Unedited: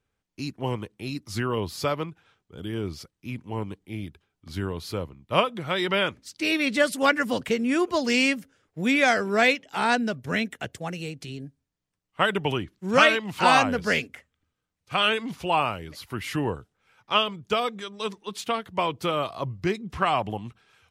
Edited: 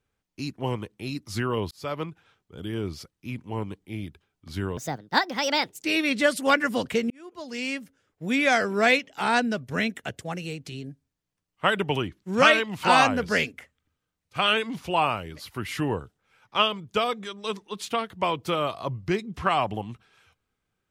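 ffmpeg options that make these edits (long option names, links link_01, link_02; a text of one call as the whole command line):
ffmpeg -i in.wav -filter_complex "[0:a]asplit=5[link_01][link_02][link_03][link_04][link_05];[link_01]atrim=end=1.71,asetpts=PTS-STARTPTS,afade=type=out:start_time=1.706:duration=0.004:curve=hsin[link_06];[link_02]atrim=start=1.71:end=4.774,asetpts=PTS-STARTPTS,afade=type=in:duration=0.34[link_07];[link_03]atrim=start=4.77:end=6.4,asetpts=PTS-STARTPTS,asetrate=67032,aresample=44100,atrim=end_sample=47291,asetpts=PTS-STARTPTS[link_08];[link_04]atrim=start=6.396:end=7.66,asetpts=PTS-STARTPTS,afade=type=out:start_time=1.26:duration=0.004:curve=hsin[link_09];[link_05]atrim=start=7.66,asetpts=PTS-STARTPTS,afade=type=in:duration=1.55[link_10];[link_06][link_07]concat=n=2:v=0:a=1[link_11];[link_11][link_08]acrossfade=duration=0.004:curve1=hsin:curve2=hsin[link_12];[link_09][link_10]concat=n=2:v=0:a=1[link_13];[link_12][link_13]acrossfade=duration=0.004:curve1=hsin:curve2=hsin" out.wav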